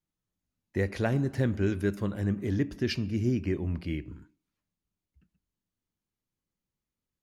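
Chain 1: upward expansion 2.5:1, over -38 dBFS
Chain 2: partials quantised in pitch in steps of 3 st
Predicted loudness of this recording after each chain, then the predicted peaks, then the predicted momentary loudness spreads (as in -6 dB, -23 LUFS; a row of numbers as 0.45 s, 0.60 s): -34.5 LUFS, -30.0 LUFS; -17.0 dBFS, -13.5 dBFS; 11 LU, 8 LU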